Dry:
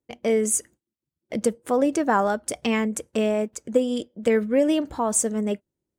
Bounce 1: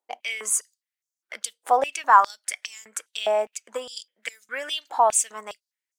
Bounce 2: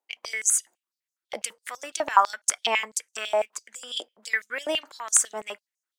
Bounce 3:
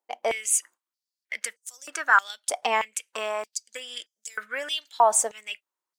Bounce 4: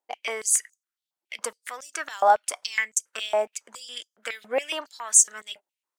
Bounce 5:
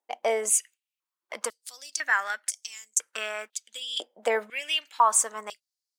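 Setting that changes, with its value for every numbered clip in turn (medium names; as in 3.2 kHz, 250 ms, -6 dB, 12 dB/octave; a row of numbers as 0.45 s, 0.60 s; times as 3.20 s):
step-sequenced high-pass, rate: 4.9 Hz, 12 Hz, 3.2 Hz, 7.2 Hz, 2 Hz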